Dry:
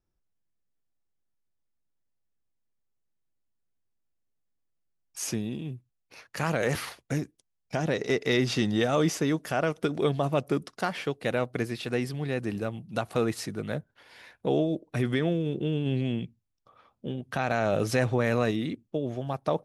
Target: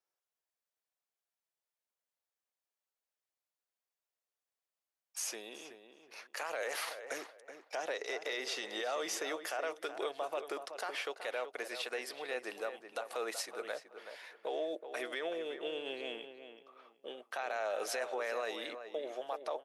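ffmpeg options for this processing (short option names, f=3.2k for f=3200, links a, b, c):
-filter_complex "[0:a]highpass=f=500:w=0.5412,highpass=f=500:w=1.3066,alimiter=level_in=3dB:limit=-24dB:level=0:latency=1:release=118,volume=-3dB,asplit=2[a][b];[b]adelay=376,lowpass=f=2.3k:p=1,volume=-9dB,asplit=2[c][d];[d]adelay=376,lowpass=f=2.3k:p=1,volume=0.25,asplit=2[e][f];[f]adelay=376,lowpass=f=2.3k:p=1,volume=0.25[g];[c][e][g]amix=inputs=3:normalize=0[h];[a][h]amix=inputs=2:normalize=0,volume=-1dB"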